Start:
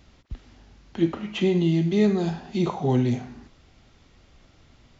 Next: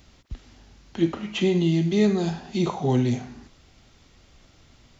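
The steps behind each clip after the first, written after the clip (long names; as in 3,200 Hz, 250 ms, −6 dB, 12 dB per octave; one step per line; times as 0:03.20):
high-shelf EQ 5,100 Hz +9 dB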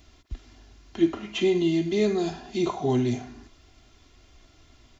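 comb filter 2.9 ms, depth 57%
level −2.5 dB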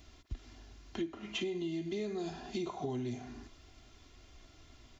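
downward compressor 8 to 1, threshold −32 dBFS, peak gain reduction 16.5 dB
level −2.5 dB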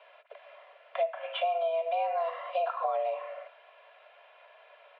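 single-sideband voice off tune +330 Hz 190–2,600 Hz
level +8 dB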